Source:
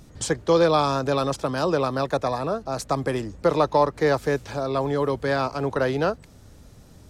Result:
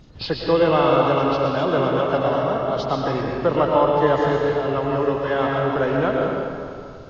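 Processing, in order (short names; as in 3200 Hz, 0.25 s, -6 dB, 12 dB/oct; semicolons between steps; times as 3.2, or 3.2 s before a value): nonlinear frequency compression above 1600 Hz 1.5:1; digital reverb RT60 2.4 s, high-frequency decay 0.7×, pre-delay 75 ms, DRR -1 dB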